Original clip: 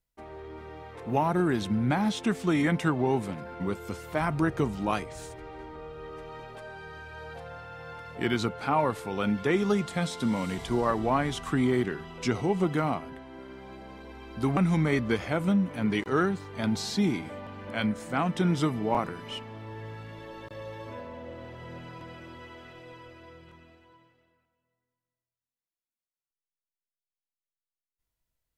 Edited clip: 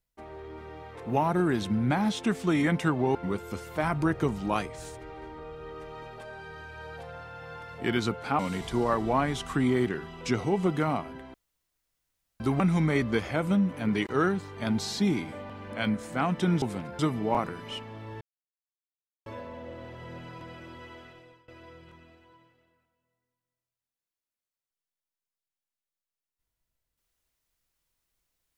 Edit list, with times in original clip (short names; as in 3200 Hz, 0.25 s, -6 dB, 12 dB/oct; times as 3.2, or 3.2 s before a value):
3.15–3.52 move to 18.59
8.76–10.36 cut
13.31–14.37 room tone
19.81–20.86 mute
22.56–23.08 fade out, to -21.5 dB